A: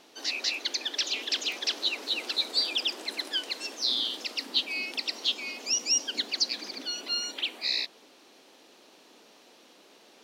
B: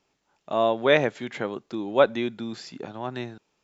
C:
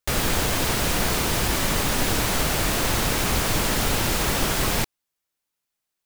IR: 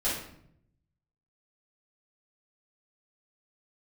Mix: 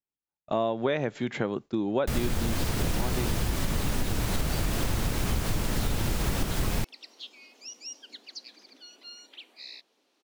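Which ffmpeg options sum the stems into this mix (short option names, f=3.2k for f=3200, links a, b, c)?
-filter_complex "[0:a]adelay=1950,volume=-15.5dB[a];[1:a]agate=range=-33dB:threshold=-38dB:ratio=3:detection=peak,lowshelf=f=260:g=9,alimiter=limit=-9.5dB:level=0:latency=1:release=173,volume=0.5dB[b];[2:a]lowshelf=f=290:g=11,adelay=2000,volume=-5.5dB[c];[a][b][c]amix=inputs=3:normalize=0,acompressor=threshold=-23dB:ratio=6"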